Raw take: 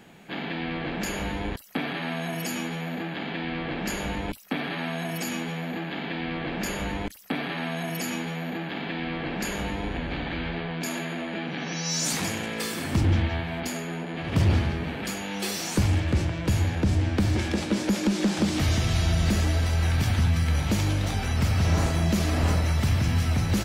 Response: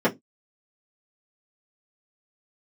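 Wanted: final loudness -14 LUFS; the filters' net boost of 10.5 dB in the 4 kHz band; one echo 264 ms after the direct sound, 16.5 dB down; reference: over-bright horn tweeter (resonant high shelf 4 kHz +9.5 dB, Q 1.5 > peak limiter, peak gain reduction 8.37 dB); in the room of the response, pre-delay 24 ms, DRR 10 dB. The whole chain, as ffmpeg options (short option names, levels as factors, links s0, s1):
-filter_complex "[0:a]equalizer=f=4000:t=o:g=6.5,aecho=1:1:264:0.15,asplit=2[s0][s1];[1:a]atrim=start_sample=2205,adelay=24[s2];[s1][s2]afir=irnorm=-1:irlink=0,volume=0.0473[s3];[s0][s3]amix=inputs=2:normalize=0,highshelf=f=4000:t=q:w=1.5:g=9.5,volume=3.55,alimiter=limit=0.708:level=0:latency=1"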